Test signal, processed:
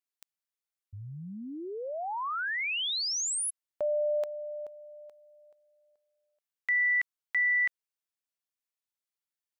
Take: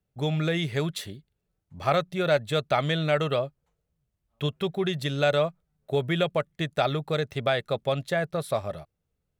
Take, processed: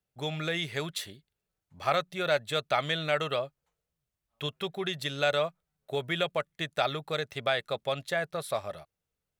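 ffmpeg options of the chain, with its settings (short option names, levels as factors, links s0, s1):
-af "lowshelf=f=490:g=-11"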